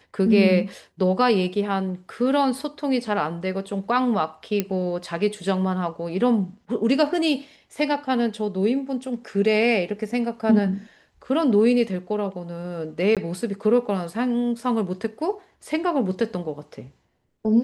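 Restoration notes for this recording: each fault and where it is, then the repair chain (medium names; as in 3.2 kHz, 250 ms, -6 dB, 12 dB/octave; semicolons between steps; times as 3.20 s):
4.60 s: pop -8 dBFS
13.15–13.17 s: dropout 17 ms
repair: de-click; interpolate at 13.15 s, 17 ms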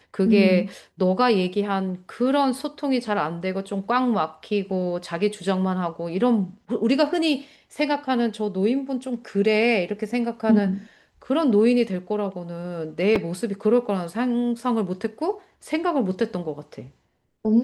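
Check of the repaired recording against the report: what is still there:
nothing left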